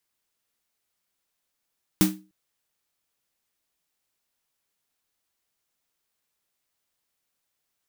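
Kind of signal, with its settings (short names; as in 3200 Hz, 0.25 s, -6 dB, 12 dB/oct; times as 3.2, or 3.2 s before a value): snare drum length 0.30 s, tones 190 Hz, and 310 Hz, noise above 520 Hz, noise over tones -5 dB, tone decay 0.33 s, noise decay 0.24 s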